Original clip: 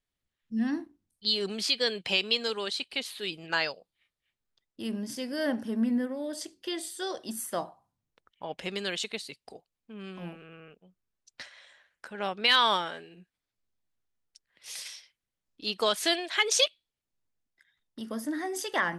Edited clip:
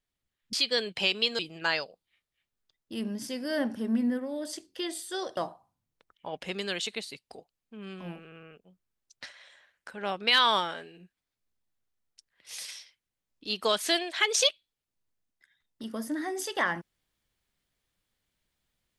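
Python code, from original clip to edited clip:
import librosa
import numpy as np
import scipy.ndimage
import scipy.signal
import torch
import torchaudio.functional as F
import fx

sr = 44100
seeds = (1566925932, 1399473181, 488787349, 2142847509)

y = fx.edit(x, sr, fx.cut(start_s=0.53, length_s=1.09),
    fx.cut(start_s=2.48, length_s=0.79),
    fx.cut(start_s=7.25, length_s=0.29), tone=tone)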